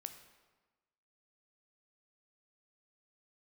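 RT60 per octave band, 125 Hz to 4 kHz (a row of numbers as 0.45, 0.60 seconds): 1.2, 1.3, 1.2, 1.3, 1.1, 0.95 seconds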